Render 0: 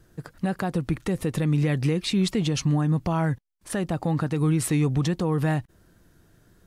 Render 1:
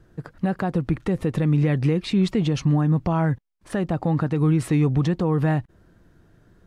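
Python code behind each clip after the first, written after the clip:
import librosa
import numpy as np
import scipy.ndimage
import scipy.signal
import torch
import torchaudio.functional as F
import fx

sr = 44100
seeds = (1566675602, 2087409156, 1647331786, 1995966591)

y = fx.lowpass(x, sr, hz=2000.0, slope=6)
y = F.gain(torch.from_numpy(y), 3.0).numpy()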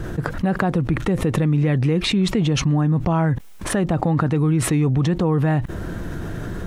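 y = fx.peak_eq(x, sr, hz=4700.0, db=-4.5, octaves=0.23)
y = fx.env_flatten(y, sr, amount_pct=70)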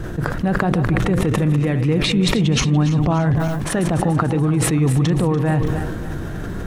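y = fx.reverse_delay_fb(x, sr, ms=145, feedback_pct=68, wet_db=-10.0)
y = fx.sustainer(y, sr, db_per_s=26.0)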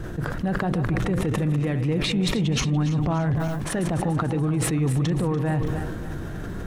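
y = 10.0 ** (-8.5 / 20.0) * np.tanh(x / 10.0 ** (-8.5 / 20.0))
y = F.gain(torch.from_numpy(y), -5.0).numpy()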